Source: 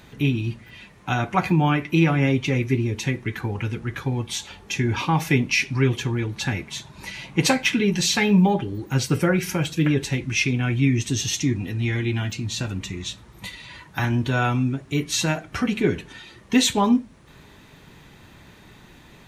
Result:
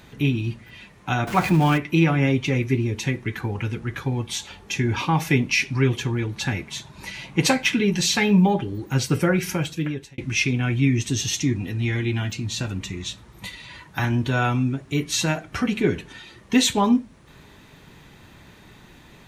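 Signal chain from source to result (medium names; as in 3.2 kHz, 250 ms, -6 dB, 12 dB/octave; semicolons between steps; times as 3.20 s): 1.27–1.78 s: jump at every zero crossing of -27.5 dBFS; 9.52–10.18 s: fade out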